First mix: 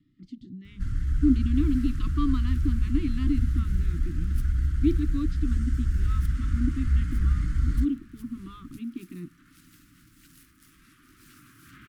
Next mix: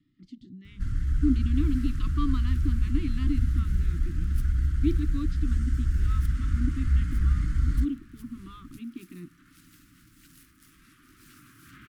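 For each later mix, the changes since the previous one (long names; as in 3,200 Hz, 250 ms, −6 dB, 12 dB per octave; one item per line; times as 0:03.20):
speech: add low-shelf EQ 480 Hz −4.5 dB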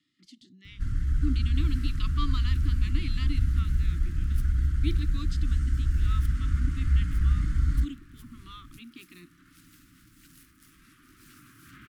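speech: add spectral tilt +4.5 dB per octave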